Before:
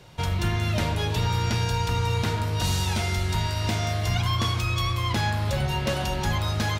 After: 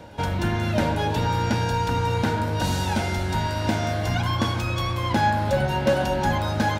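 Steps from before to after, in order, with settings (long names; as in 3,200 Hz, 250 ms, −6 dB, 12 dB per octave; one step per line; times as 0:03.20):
hollow resonant body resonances 270/550/810/1,500 Hz, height 12 dB, ringing for 20 ms
backwards echo 850 ms −22 dB
level −3 dB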